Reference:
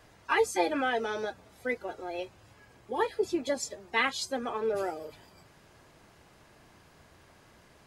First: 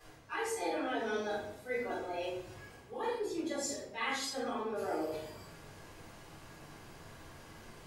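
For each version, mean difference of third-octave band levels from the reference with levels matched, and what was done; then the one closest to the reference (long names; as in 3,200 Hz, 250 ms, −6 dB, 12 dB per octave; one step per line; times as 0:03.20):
9.0 dB: high-shelf EQ 5,200 Hz +5.5 dB
reversed playback
downward compressor 4 to 1, threshold −39 dBFS, peak gain reduction 15.5 dB
reversed playback
rectangular room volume 150 cubic metres, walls mixed, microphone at 3.8 metres
level −8.5 dB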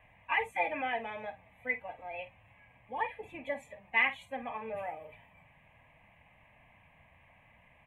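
6.5 dB: high shelf with overshoot 3,400 Hz −13 dB, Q 3
phaser with its sweep stopped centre 1,400 Hz, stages 6
double-tracking delay 50 ms −12.5 dB
level −3 dB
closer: second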